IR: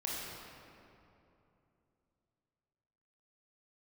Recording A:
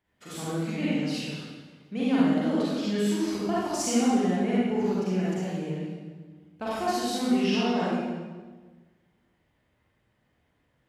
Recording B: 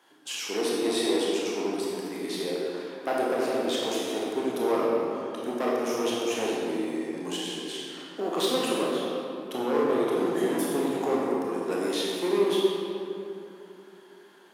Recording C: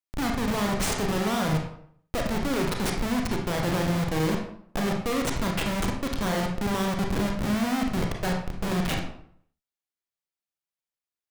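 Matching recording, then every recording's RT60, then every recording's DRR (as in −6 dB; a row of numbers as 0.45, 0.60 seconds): B; 1.4, 2.9, 0.60 seconds; −8.5, −5.0, 1.0 decibels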